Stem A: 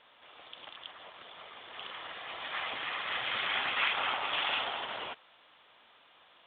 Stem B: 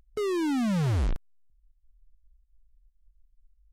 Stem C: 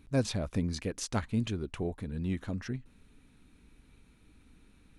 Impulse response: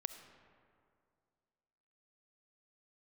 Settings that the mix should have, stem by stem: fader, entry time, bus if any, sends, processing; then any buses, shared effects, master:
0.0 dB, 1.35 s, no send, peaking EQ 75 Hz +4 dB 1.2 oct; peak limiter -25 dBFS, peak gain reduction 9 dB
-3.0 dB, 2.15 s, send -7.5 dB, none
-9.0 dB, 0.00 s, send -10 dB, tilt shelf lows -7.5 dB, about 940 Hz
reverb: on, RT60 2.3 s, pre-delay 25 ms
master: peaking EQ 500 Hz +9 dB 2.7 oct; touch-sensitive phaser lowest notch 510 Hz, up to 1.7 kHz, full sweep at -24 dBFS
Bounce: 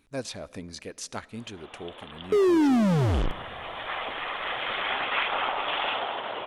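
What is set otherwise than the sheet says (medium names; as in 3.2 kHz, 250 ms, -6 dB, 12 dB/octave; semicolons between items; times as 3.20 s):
stem A: missing peak limiter -25 dBFS, peak gain reduction 9 dB; master: missing touch-sensitive phaser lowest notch 510 Hz, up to 1.7 kHz, full sweep at -24 dBFS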